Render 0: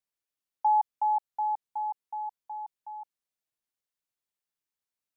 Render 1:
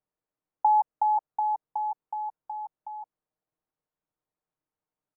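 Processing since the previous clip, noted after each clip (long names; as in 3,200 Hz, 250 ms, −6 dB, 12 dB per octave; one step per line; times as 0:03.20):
low-pass filter 1,000 Hz 12 dB per octave
comb filter 6.5 ms, depth 42%
level +8.5 dB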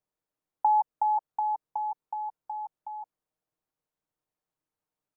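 dynamic equaliser 710 Hz, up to −3 dB, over −35 dBFS, Q 2.4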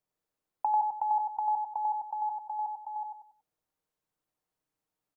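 downward compressor 3 to 1, threshold −29 dBFS, peak gain reduction 7 dB
on a send: repeating echo 93 ms, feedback 33%, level −3.5 dB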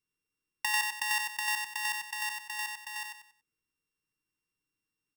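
samples sorted by size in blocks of 16 samples
Butterworth band-reject 660 Hz, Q 1.2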